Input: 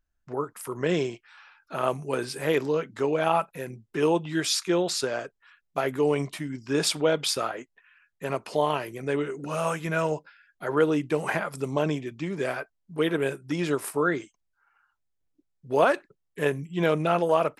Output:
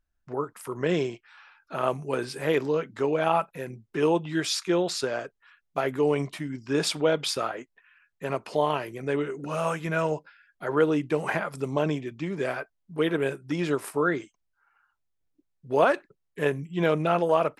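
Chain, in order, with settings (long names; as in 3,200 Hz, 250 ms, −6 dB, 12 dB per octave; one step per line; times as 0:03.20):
high-shelf EQ 6,400 Hz −6.5 dB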